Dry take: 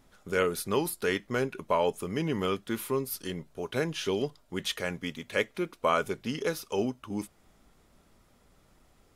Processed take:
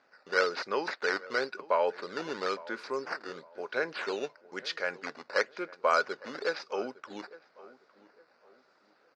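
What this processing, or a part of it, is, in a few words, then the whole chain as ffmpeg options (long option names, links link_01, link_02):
circuit-bent sampling toy: -filter_complex "[0:a]acrusher=samples=8:mix=1:aa=0.000001:lfo=1:lforange=12.8:lforate=1,highpass=470,equalizer=frequency=530:width_type=q:width=4:gain=4,equalizer=frequency=1500:width_type=q:width=4:gain=8,equalizer=frequency=3200:width_type=q:width=4:gain=-9,equalizer=frequency=4700:width_type=q:width=4:gain=8,lowpass=frequency=5100:width=0.5412,lowpass=frequency=5100:width=1.3066,asettb=1/sr,asplit=3[link_01][link_02][link_03];[link_01]atrim=end=2.714[link_04];[link_02]atrim=start=2.71:end=3.21,asetpts=PTS-STARTPTS,afade=type=in:duration=0.004:curve=qsin,afade=type=out:start_time=0.496:duration=0.004:curve=qsin,equalizer=frequency=3400:width_type=o:width=1.7:gain=-4[link_05];[link_03]atrim=start=3.206[link_06];[link_04][link_05]acrossfade=duration=0.004:curve1=hsin:curve2=qsin[link_07];[link_07][link_06]acrossfade=duration=0.004:curve1=qsin:curve2=hsin,asplit=2[link_08][link_09];[link_09]adelay=858,lowpass=frequency=1700:poles=1,volume=-19dB,asplit=2[link_10][link_11];[link_11]adelay=858,lowpass=frequency=1700:poles=1,volume=0.34,asplit=2[link_12][link_13];[link_13]adelay=858,lowpass=frequency=1700:poles=1,volume=0.34[link_14];[link_08][link_10][link_12][link_14]amix=inputs=4:normalize=0,volume=-1dB"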